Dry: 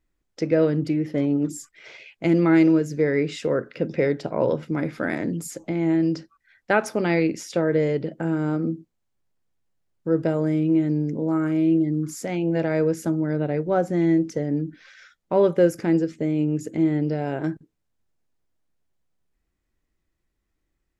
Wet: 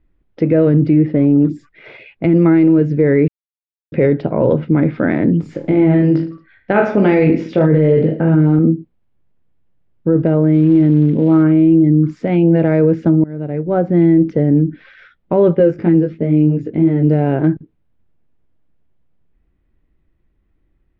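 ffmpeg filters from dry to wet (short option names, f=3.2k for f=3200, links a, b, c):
-filter_complex "[0:a]asettb=1/sr,asplit=3[a][b][c];[a]atrim=end=0.714[d];[b]atrim=start=0.71:end=2.77,asetpts=PTS-STARTPTS,afade=t=in:d=0.004:c=qsin,afade=t=out:st=2.056:d=0.004:c=qsin,bandreject=f=3.1k:w=12[e];[c]atrim=start=2.766[f];[d][e]acrossfade=d=0.004:c1=hsin:c2=qsin[g];[g][f]acrossfade=d=0.004:c1=qsin:c2=hsin,asettb=1/sr,asplit=3[h][i][j];[h]atrim=end=5.414[k];[i]atrim=start=5.41:end=8.59,asetpts=PTS-STARTPTS,afade=t=in:d=0.004:c=qsin,afade=t=out:st=3.176:d=0.004:c=qsin,aecho=1:1:20|45|76.25|115.3|164.1|225.2:0.631|0.398|0.251|0.158|0.1|0.0631,atrim=end_sample=140238[l];[j]atrim=start=8.586[m];[k][l]acrossfade=d=0.004:c1=hsin:c2=qsin[n];[n][m]acrossfade=d=0.004:c1=qsin:c2=hsin,asettb=1/sr,asplit=3[o][p][q];[o]atrim=end=10.544[r];[p]atrim=start=10.54:end=11.43,asetpts=PTS-STARTPTS,afade=t=in:d=0.004:c=qsin,afade=t=out:st=0.886:d=0.004:c=qsin,acrusher=bits=6:mode=log:mix=0:aa=0.000001[s];[q]atrim=start=11.426[t];[r][s]acrossfade=d=0.004:c1=hsin:c2=qsin[u];[u][t]acrossfade=d=0.004:c1=qsin:c2=hsin,asettb=1/sr,asplit=3[v][w][x];[v]atrim=end=15.554[y];[w]atrim=start=15.55:end=17.07,asetpts=PTS-STARTPTS,afade=t=in:d=0.004:c=qsin,afade=t=out:st=1.516:d=0.004:c=qsin,flanger=delay=17.5:depth=2.7:speed=2.9[z];[x]atrim=start=17.066[aa];[y][z]acrossfade=d=0.004:c1=hsin:c2=qsin[ab];[ab][aa]acrossfade=d=0.004:c1=qsin:c2=hsin,asplit=4[ac][ad][ae][af];[ac]atrim=end=3.28,asetpts=PTS-STARTPTS,afade=t=out:st=3.276:d=0.004:c=hsin[ag];[ad]atrim=start=3.28:end=3.92,asetpts=PTS-STARTPTS,volume=0[ah];[ae]atrim=start=3.92:end=13.24,asetpts=PTS-STARTPTS,afade=t=in:d=0.004:c=hsin,afade=t=out:st=9.316:d=0.004:c=hsin:silence=0.0891251[ai];[af]atrim=start=13.24,asetpts=PTS-STARTPTS,afade=t=in:d=0.96:silence=0.0891251[aj];[ag][ah][ai][aj]concat=n=4:v=0:a=1,lowpass=f=3.3k:w=0.5412,lowpass=f=3.3k:w=1.3066,lowshelf=f=490:g=10.5,alimiter=limit=-9dB:level=0:latency=1:release=11,volume=5dB"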